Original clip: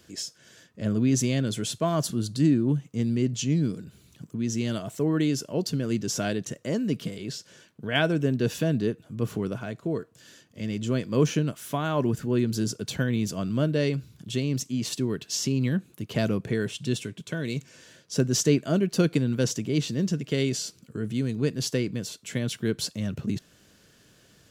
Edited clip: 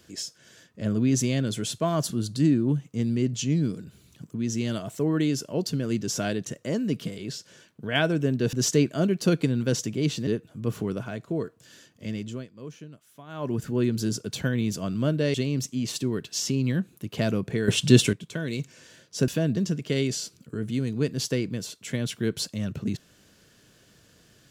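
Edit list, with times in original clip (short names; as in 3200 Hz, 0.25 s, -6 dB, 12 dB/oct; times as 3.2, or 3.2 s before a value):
8.53–8.82 swap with 18.25–19.99
10.62–12.22 dip -18.5 dB, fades 0.41 s
13.89–14.31 cut
16.65–17.1 gain +11.5 dB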